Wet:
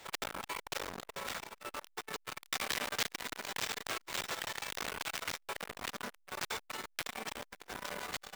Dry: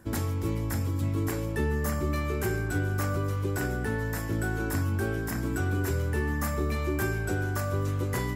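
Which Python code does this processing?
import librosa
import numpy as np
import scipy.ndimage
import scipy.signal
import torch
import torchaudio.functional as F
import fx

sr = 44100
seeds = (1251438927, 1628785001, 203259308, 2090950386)

y = fx.spec_gate(x, sr, threshold_db=-20, keep='weak')
y = fx.high_shelf(y, sr, hz=2200.0, db=9.5, at=(2.45, 5.21), fade=0.02)
y = np.clip(y, -10.0 ** (-31.0 / 20.0), 10.0 ** (-31.0 / 20.0))
y = fx.tremolo_random(y, sr, seeds[0], hz=3.5, depth_pct=55)
y = fx.echo_diffused(y, sr, ms=483, feedback_pct=66, wet_db=-15.0)
y = fx.room_shoebox(y, sr, seeds[1], volume_m3=180.0, walls='furnished', distance_m=0.34)
y = np.repeat(y[::4], 4)[:len(y)]
y = fx.transformer_sat(y, sr, knee_hz=3300.0)
y = y * 10.0 ** (11.5 / 20.0)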